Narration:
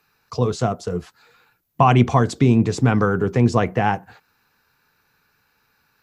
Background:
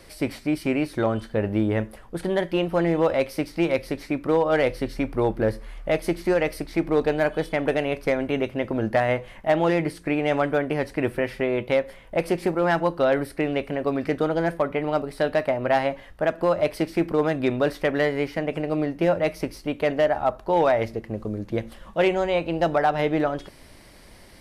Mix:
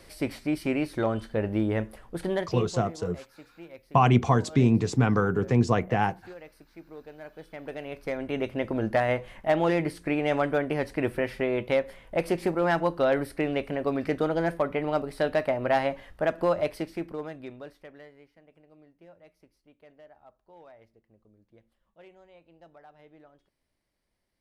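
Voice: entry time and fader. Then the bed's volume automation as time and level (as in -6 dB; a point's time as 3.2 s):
2.15 s, -5.5 dB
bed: 2.33 s -3.5 dB
3.01 s -23.5 dB
7.11 s -23.5 dB
8.52 s -3 dB
16.51 s -3 dB
18.35 s -32 dB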